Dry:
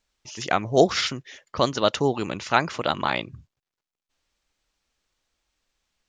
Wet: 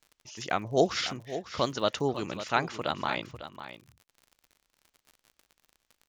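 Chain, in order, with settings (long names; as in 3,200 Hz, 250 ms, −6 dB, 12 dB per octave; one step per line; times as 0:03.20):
surface crackle 41 per second −36 dBFS
on a send: single-tap delay 550 ms −12 dB
on the sum: level −6.5 dB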